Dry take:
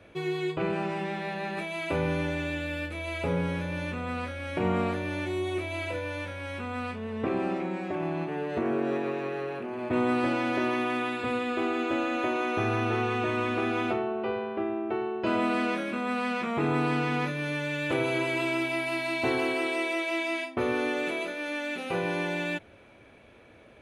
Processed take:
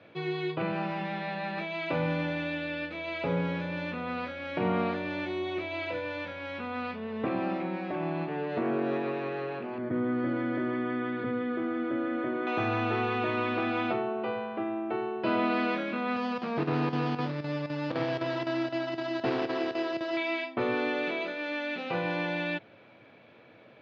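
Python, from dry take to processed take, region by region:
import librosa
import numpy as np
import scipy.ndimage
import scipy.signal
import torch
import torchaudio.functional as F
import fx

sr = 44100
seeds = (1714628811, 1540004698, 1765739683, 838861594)

y = fx.chain(x, sr, fx.savgol(points=41),
    fx.peak_eq(hz=860.0, db=-15.0, octaves=1.1),
    fx.env_flatten(amount_pct=50), at=(9.78, 12.47))
y = fx.chain(y, sr, fx.chopper(hz=3.9, depth_pct=65, duty_pct=85),
    fx.running_max(window=17), at=(16.16, 20.17))
y = scipy.signal.sosfilt(scipy.signal.ellip(3, 1.0, 40, [120.0, 4600.0], 'bandpass', fs=sr, output='sos'), y)
y = fx.notch(y, sr, hz=390.0, q=12.0)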